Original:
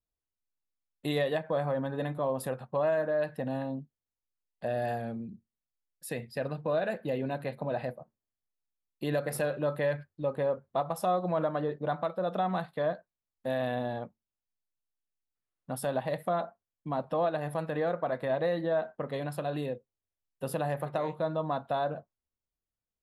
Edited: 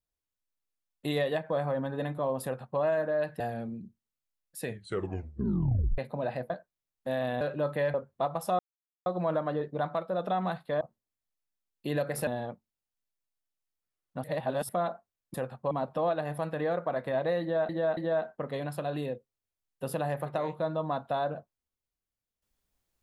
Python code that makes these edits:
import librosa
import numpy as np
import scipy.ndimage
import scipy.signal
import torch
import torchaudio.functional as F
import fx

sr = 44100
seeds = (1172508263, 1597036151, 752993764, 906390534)

y = fx.edit(x, sr, fx.duplicate(start_s=2.43, length_s=0.37, to_s=16.87),
    fx.cut(start_s=3.4, length_s=1.48),
    fx.tape_stop(start_s=6.11, length_s=1.35),
    fx.swap(start_s=7.98, length_s=1.46, other_s=12.89, other_length_s=0.91),
    fx.cut(start_s=9.97, length_s=0.52),
    fx.insert_silence(at_s=11.14, length_s=0.47),
    fx.reverse_span(start_s=15.77, length_s=0.45),
    fx.repeat(start_s=18.57, length_s=0.28, count=3), tone=tone)